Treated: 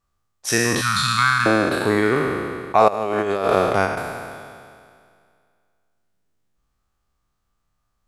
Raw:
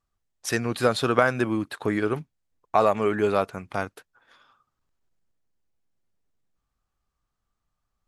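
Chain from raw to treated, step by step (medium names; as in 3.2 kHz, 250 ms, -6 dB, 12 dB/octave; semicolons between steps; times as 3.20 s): spectral sustain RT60 2.19 s; 0.81–1.46 s: elliptic band-stop 190–1100 Hz, stop band 50 dB; 2.88–3.86 s: compressor with a negative ratio -22 dBFS, ratio -0.5; trim +3 dB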